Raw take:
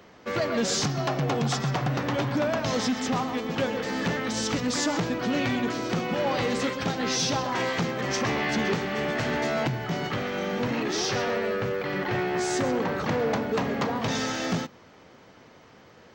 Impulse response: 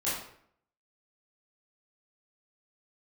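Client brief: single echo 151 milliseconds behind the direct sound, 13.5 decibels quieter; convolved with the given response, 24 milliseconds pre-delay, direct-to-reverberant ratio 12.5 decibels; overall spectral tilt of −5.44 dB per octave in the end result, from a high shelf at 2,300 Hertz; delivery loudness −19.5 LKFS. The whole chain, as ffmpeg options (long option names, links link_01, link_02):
-filter_complex "[0:a]highshelf=frequency=2300:gain=-6.5,aecho=1:1:151:0.211,asplit=2[link_01][link_02];[1:a]atrim=start_sample=2205,adelay=24[link_03];[link_02][link_03]afir=irnorm=-1:irlink=0,volume=-20dB[link_04];[link_01][link_04]amix=inputs=2:normalize=0,volume=8dB"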